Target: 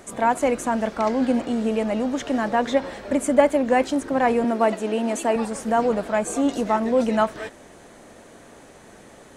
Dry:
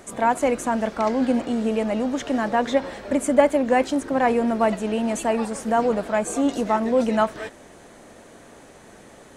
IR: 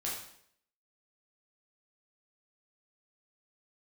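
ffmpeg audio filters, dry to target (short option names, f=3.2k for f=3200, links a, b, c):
-filter_complex "[0:a]asettb=1/sr,asplit=3[a][b][c];[a]atrim=end=4.444[d];[b]atrim=start=4.44:end=5.36,asetpts=PTS-STARTPTS,afade=t=in:d=0.004:c=qsin,afade=t=out:st=0.916:d=0.004:c=qsin,lowshelf=f=190:t=q:w=1.5:g=-11.5[e];[c]atrim=start=5.356[f];[d][e]acrossfade=d=0.004:c1=hsin:c2=qsin[g];[g][f]acrossfade=d=0.004:c1=qsin:c2=hsin"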